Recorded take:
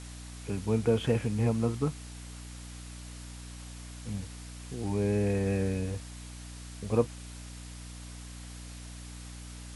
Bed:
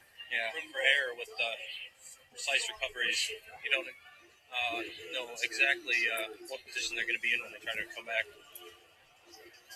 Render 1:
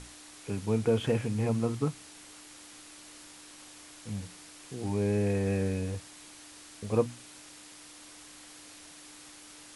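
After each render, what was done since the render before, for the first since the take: notches 60/120/180/240 Hz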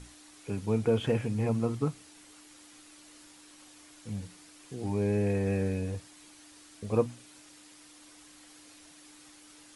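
denoiser 6 dB, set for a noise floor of -51 dBFS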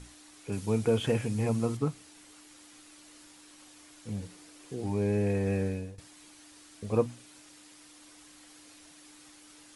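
0.52–1.77 high shelf 4500 Hz +8.5 dB; 4.08–4.81 bell 440 Hz +5.5 dB 1.2 oct; 5.53–5.98 fade out equal-power, to -20 dB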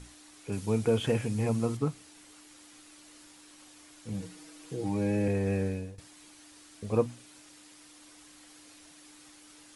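4.13–5.28 comb 6.3 ms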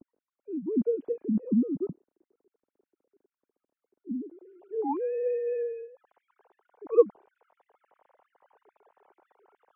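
sine-wave speech; low-pass sweep 280 Hz -> 880 Hz, 4.13–4.72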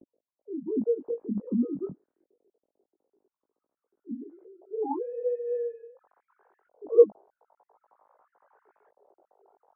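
LFO low-pass saw up 0.45 Hz 540–1800 Hz; chorus 0.25 Hz, delay 17.5 ms, depth 3.4 ms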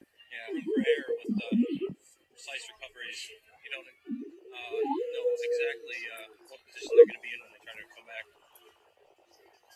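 add bed -9.5 dB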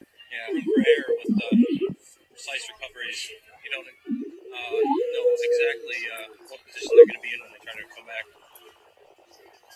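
gain +8 dB; limiter -1 dBFS, peak gain reduction 2.5 dB

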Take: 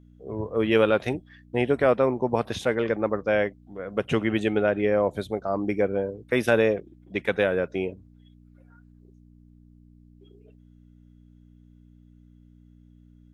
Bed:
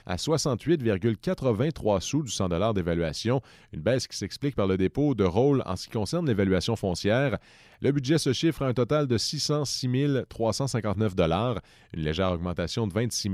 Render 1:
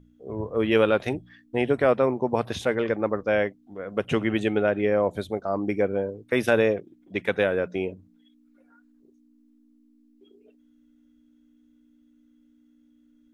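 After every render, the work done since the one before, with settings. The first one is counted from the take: de-hum 60 Hz, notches 3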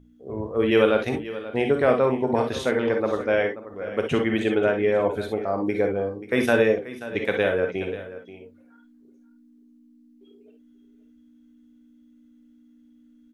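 echo 0.533 s -15 dB; non-linear reverb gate 80 ms rising, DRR 4 dB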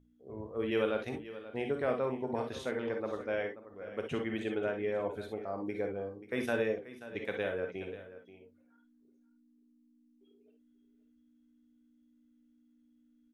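gain -12.5 dB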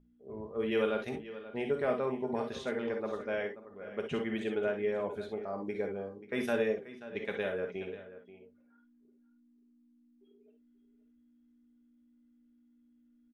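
low-pass opened by the level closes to 2500 Hz, open at -31 dBFS; comb 4.9 ms, depth 42%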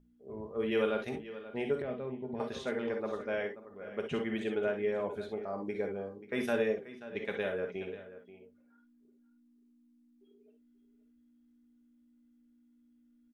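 1.82–2.4 EQ curve 130 Hz 0 dB, 590 Hz -8 dB, 1100 Hz -13 dB, 3700 Hz -6 dB, 7600 Hz -30 dB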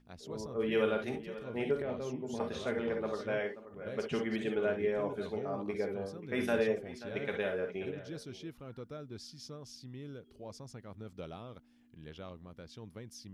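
add bed -21 dB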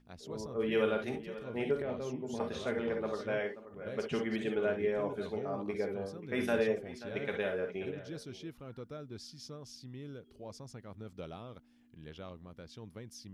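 nothing audible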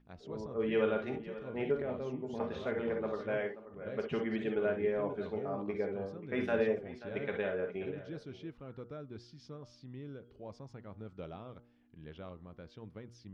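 Bessel low-pass 2500 Hz, order 2; de-hum 119.2 Hz, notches 13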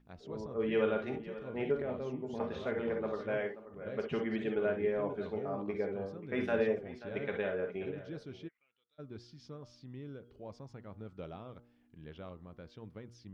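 8.47–8.98 band-pass 1800 Hz -> 4200 Hz, Q 13

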